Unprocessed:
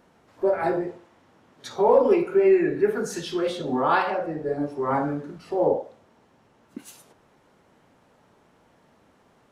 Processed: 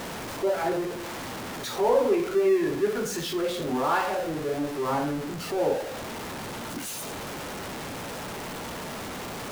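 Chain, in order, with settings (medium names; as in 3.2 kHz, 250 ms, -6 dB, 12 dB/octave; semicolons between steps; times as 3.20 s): jump at every zero crossing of -24.5 dBFS; trim -5.5 dB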